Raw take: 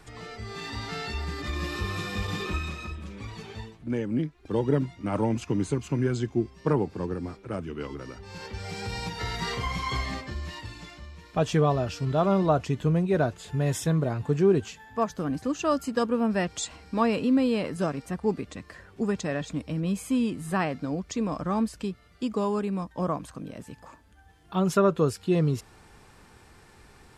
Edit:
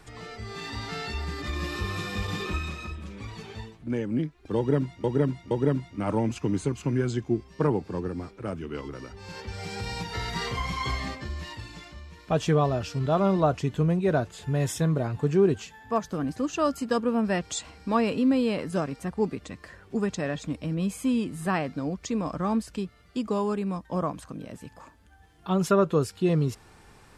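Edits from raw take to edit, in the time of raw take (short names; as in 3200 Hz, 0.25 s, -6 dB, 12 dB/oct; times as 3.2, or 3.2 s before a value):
4.57–5.04 loop, 3 plays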